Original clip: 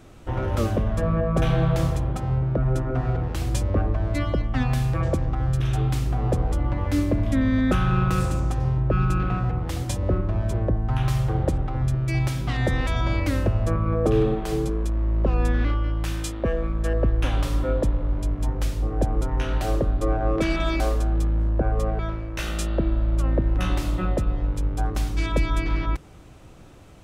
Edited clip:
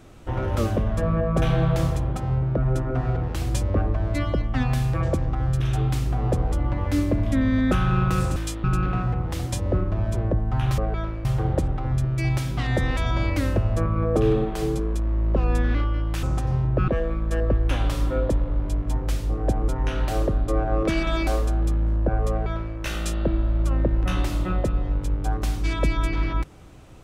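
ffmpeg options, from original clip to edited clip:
-filter_complex "[0:a]asplit=7[s0][s1][s2][s3][s4][s5][s6];[s0]atrim=end=8.362[s7];[s1]atrim=start=16.128:end=16.412[s8];[s2]atrim=start=9.008:end=11.152[s9];[s3]atrim=start=21.828:end=22.302[s10];[s4]atrim=start=11.148:end=16.132[s11];[s5]atrim=start=8.358:end=9.012[s12];[s6]atrim=start=16.408[s13];[s7][s8]acrossfade=d=0.004:c1=hsin:c2=hsin[s14];[s14][s9]acrossfade=d=0.004:c1=hsin:c2=hsin[s15];[s15][s10]acrossfade=d=0.004:c1=hsin:c2=hsin[s16];[s16][s11]acrossfade=d=0.004:c1=hsin:c2=hsin[s17];[s17][s12]acrossfade=d=0.004:c1=hsin:c2=hsin[s18];[s18][s13]acrossfade=d=0.004:c1=hsin:c2=hsin"

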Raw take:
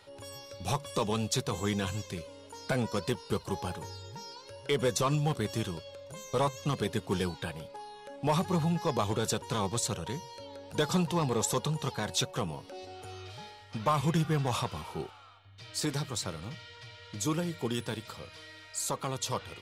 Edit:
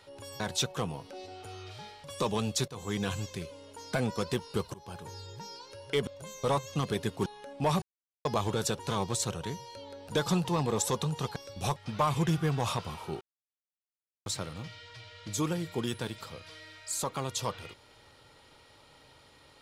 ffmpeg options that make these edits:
-filter_complex "[0:a]asplit=13[s0][s1][s2][s3][s4][s5][s6][s7][s8][s9][s10][s11][s12];[s0]atrim=end=0.402[s13];[s1]atrim=start=11.988:end=13.632[s14];[s2]atrim=start=0.798:end=1.44,asetpts=PTS-STARTPTS,afade=t=out:st=0.638:d=0.004:c=hsin:silence=0.177828[s15];[s3]atrim=start=1.44:end=3.5,asetpts=PTS-STARTPTS,afade=t=in:d=0.36:silence=0.177828,afade=t=out:st=2.056:d=0.004:c=hsin:silence=0.0707946[s16];[s4]atrim=start=3.5:end=4.832,asetpts=PTS-STARTPTS,afade=t=in:d=0.47:silence=0.0707946[s17];[s5]atrim=start=5.968:end=7.162[s18];[s6]atrim=start=7.888:end=8.45,asetpts=PTS-STARTPTS,afade=t=out:st=0.558:d=0.004:c=hsin[s19];[s7]atrim=start=8.45:end=8.88,asetpts=PTS-STARTPTS,volume=0[s20];[s8]atrim=start=8.88:end=11.992,asetpts=PTS-STARTPTS,afade=t=in:d=0.004:c=hsin[s21];[s9]atrim=start=0.398:end=0.802[s22];[s10]atrim=start=13.628:end=15.08,asetpts=PTS-STARTPTS,afade=t=out:st=1.448:d=0.004:c=hsin[s23];[s11]atrim=start=15.08:end=16.13,asetpts=PTS-STARTPTS,volume=0[s24];[s12]atrim=start=16.13,asetpts=PTS-STARTPTS,afade=t=in:d=0.004:c=hsin[s25];[s13][s14]acrossfade=d=0.004:c1=hsin:c2=hsin[s26];[s15][s16][s17]concat=n=3:v=0:a=1[s27];[s26][s27]acrossfade=d=0.004:c1=hsin:c2=hsin[s28];[s28][s18]acrossfade=d=0.004:c1=hsin:c2=hsin[s29];[s19][s20][s21]concat=n=3:v=0:a=1[s30];[s29][s30]acrossfade=d=0.004:c1=hsin:c2=hsin[s31];[s31][s22]acrossfade=d=0.004:c1=hsin:c2=hsin[s32];[s23][s24][s25]concat=n=3:v=0:a=1[s33];[s32][s33]acrossfade=d=0.004:c1=hsin:c2=hsin"

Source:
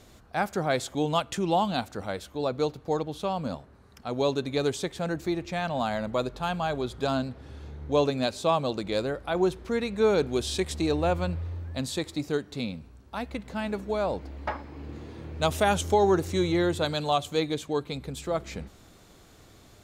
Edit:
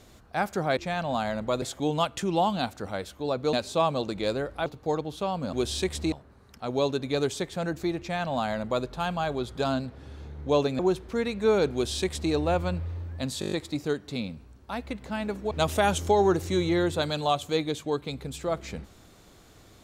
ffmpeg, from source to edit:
-filter_complex "[0:a]asplit=15[s0][s1][s2][s3][s4][s5][s6][s7][s8][s9][s10][s11][s12][s13][s14];[s0]atrim=end=0.772[s15];[s1]atrim=start=5.428:end=6.282[s16];[s2]atrim=start=0.768:end=2.682[s17];[s3]atrim=start=8.218:end=9.352[s18];[s4]atrim=start=2.678:end=3.552[s19];[s5]atrim=start=10.288:end=10.882[s20];[s6]atrim=start=3.548:end=8.222[s21];[s7]atrim=start=9.348:end=11.982[s22];[s8]atrim=start=11.958:end=11.982[s23];[s9]atrim=start=11.958:end=11.982[s24];[s10]atrim=start=11.958:end=11.982[s25];[s11]atrim=start=11.958:end=11.982[s26];[s12]atrim=start=11.958:end=11.982[s27];[s13]atrim=start=11.958:end=13.952[s28];[s14]atrim=start=15.338[s29];[s15][s16]acrossfade=d=0.004:c1=hsin:c2=hsin[s30];[s30][s17]acrossfade=d=0.004:c1=hsin:c2=hsin[s31];[s31][s18]acrossfade=d=0.004:c1=hsin:c2=hsin[s32];[s32][s19]acrossfade=d=0.004:c1=hsin:c2=hsin[s33];[s33][s20]acrossfade=d=0.004:c1=hsin:c2=hsin[s34];[s34][s21]acrossfade=d=0.004:c1=hsin:c2=hsin[s35];[s35][s22]acrossfade=d=0.004:c1=hsin:c2=hsin[s36];[s36][s23]acrossfade=d=0.004:c1=hsin:c2=hsin[s37];[s37][s24]acrossfade=d=0.004:c1=hsin:c2=hsin[s38];[s38][s25]acrossfade=d=0.004:c1=hsin:c2=hsin[s39];[s39][s26]acrossfade=d=0.004:c1=hsin:c2=hsin[s40];[s40][s27]acrossfade=d=0.004:c1=hsin:c2=hsin[s41];[s41][s28]acrossfade=d=0.004:c1=hsin:c2=hsin[s42];[s42][s29]acrossfade=d=0.004:c1=hsin:c2=hsin"

